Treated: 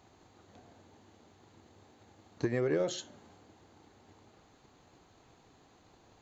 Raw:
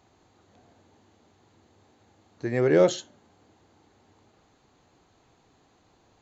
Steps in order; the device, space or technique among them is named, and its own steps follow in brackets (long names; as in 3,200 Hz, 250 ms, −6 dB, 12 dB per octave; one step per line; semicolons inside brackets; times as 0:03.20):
drum-bus smash (transient designer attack +7 dB, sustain +3 dB; downward compressor 12 to 1, threshold −26 dBFS, peak gain reduction 14.5 dB; soft clipping −18 dBFS, distortion −23 dB)